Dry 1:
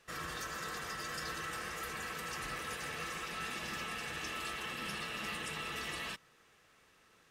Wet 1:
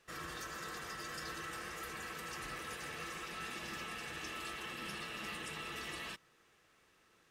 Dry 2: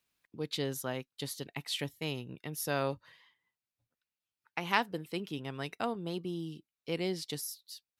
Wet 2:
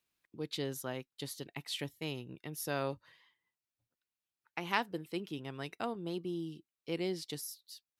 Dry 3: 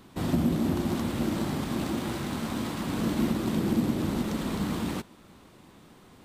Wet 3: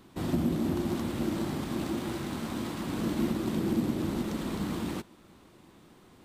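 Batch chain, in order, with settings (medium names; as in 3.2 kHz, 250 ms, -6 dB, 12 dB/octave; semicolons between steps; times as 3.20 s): peaking EQ 340 Hz +4.5 dB 0.28 oct; trim -3.5 dB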